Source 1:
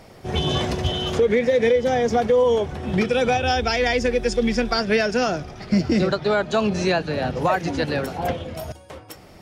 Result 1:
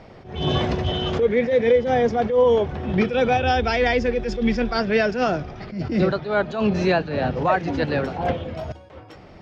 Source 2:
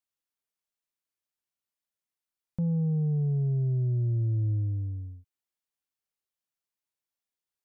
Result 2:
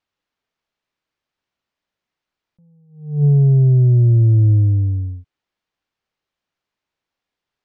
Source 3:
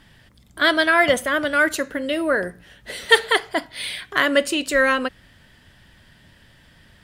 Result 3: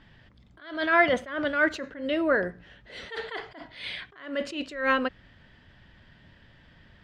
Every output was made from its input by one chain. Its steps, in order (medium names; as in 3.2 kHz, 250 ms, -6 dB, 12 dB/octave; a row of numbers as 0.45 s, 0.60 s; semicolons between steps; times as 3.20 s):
distance through air 180 m; attacks held to a fixed rise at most 110 dB/s; peak normalisation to -9 dBFS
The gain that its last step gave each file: +2.0 dB, +15.0 dB, -2.0 dB